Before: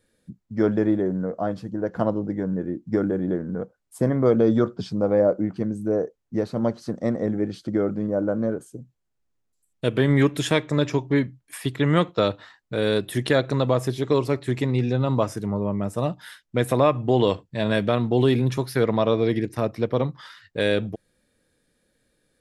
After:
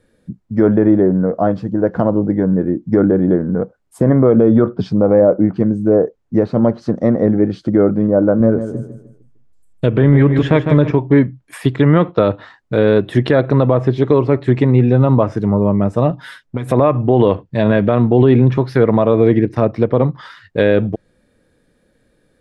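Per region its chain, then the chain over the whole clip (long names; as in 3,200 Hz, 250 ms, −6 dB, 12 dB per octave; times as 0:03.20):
0:08.40–0:10.91: low-shelf EQ 85 Hz +11.5 dB + repeating echo 152 ms, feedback 34%, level −10.5 dB
0:16.10–0:16.71: downward compressor 10 to 1, threshold −29 dBFS + comb filter 7.3 ms + one half of a high-frequency compander decoder only
whole clip: treble cut that deepens with the level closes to 2,700 Hz, closed at −18.5 dBFS; high-shelf EQ 2,400 Hz −11.5 dB; boost into a limiter +12.5 dB; level −1 dB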